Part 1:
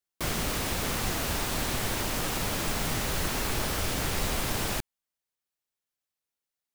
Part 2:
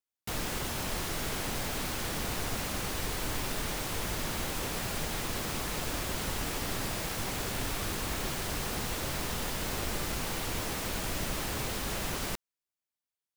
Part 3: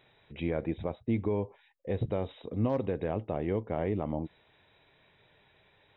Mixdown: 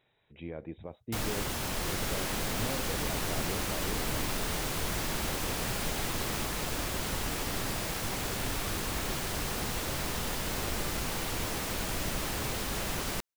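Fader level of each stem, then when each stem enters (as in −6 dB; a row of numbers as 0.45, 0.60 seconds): −10.5, +0.5, −9.0 decibels; 1.65, 0.85, 0.00 seconds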